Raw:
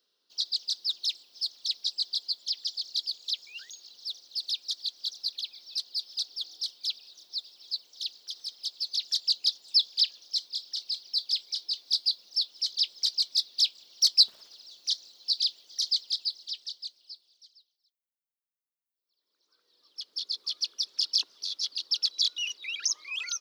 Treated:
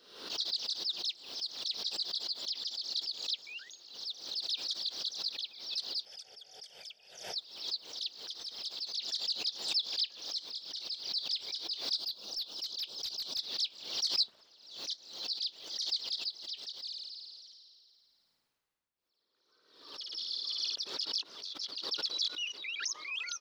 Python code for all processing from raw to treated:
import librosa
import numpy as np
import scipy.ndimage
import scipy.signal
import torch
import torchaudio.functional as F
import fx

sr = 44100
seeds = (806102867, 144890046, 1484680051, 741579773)

y = fx.chain(x, sr, fx.brickwall_lowpass(high_hz=13000.0),
    fx.fixed_phaser(hz=1100.0, stages=6), at=(6.05, 7.36))
y = fx.chain(y, sr, fx.peak_eq(hz=2000.0, db=-14.0, octaves=0.49),
    fx.clip_hard(threshold_db=-26.0), at=(11.98, 13.39))
y = fx.chain(y, sr, fx.room_flutter(wall_m=9.3, rt60_s=1.2),
    fx.sustainer(db_per_s=26.0), at=(16.81, 20.76))
y = fx.rider(y, sr, range_db=4, speed_s=2.0)
y = fx.lowpass(y, sr, hz=2400.0, slope=6)
y = fx.pre_swell(y, sr, db_per_s=79.0)
y = F.gain(torch.from_numpy(y), -2.0).numpy()